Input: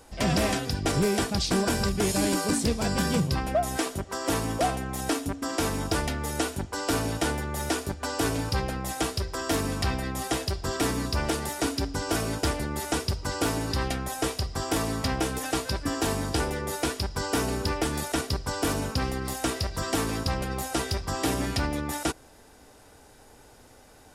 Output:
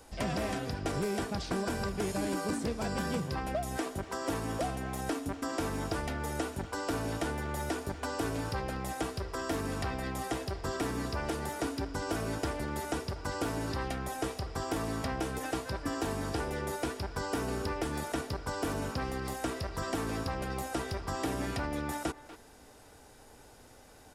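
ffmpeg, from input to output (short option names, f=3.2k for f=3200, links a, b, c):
-filter_complex "[0:a]asplit=2[a][b];[b]adelay=240,highpass=300,lowpass=3.4k,asoftclip=type=hard:threshold=-27dB,volume=-15dB[c];[a][c]amix=inputs=2:normalize=0,acrossover=split=320|2200[d][e][f];[d]acompressor=threshold=-33dB:ratio=4[g];[e]acompressor=threshold=-31dB:ratio=4[h];[f]acompressor=threshold=-43dB:ratio=4[i];[g][h][i]amix=inputs=3:normalize=0,volume=-2.5dB"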